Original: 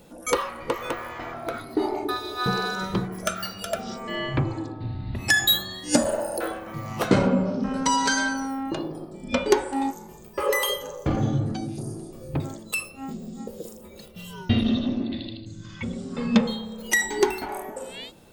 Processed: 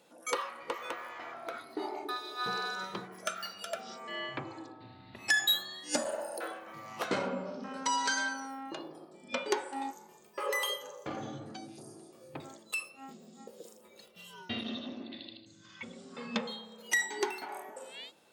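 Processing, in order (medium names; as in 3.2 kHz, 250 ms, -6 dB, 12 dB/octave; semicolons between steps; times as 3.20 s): frequency weighting A; trim -8 dB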